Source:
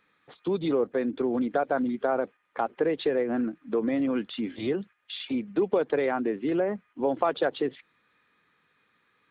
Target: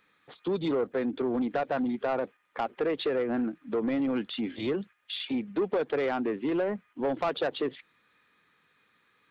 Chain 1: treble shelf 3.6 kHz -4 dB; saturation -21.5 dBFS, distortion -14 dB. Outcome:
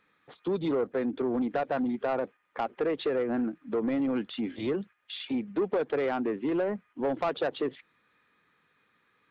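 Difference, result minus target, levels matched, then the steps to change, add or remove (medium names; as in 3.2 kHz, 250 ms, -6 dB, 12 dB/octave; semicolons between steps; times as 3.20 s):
4 kHz band -3.5 dB
change: treble shelf 3.6 kHz +5 dB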